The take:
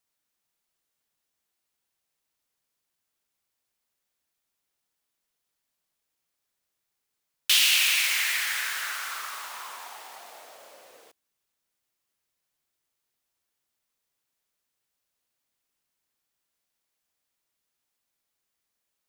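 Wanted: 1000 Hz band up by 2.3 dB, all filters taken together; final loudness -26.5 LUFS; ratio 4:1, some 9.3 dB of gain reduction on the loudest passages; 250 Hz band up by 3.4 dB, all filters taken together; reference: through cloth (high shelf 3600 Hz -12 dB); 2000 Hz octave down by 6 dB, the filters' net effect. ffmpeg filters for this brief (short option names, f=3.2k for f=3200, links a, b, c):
-af "equalizer=f=250:t=o:g=4.5,equalizer=f=1k:t=o:g=6,equalizer=f=2k:t=o:g=-5,acompressor=threshold=-29dB:ratio=4,highshelf=f=3.6k:g=-12,volume=10.5dB"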